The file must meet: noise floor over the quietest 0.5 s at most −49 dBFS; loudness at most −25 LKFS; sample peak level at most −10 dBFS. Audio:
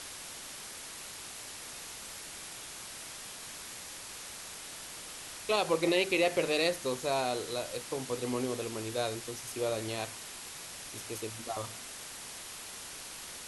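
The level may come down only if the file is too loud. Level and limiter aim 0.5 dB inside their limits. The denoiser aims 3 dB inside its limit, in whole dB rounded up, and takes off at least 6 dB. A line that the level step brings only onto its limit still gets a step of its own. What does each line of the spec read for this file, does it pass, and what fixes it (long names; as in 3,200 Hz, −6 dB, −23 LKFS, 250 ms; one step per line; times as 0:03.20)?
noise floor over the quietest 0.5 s −45 dBFS: out of spec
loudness −35.5 LKFS: in spec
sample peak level −15.0 dBFS: in spec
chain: broadband denoise 7 dB, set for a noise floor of −45 dBFS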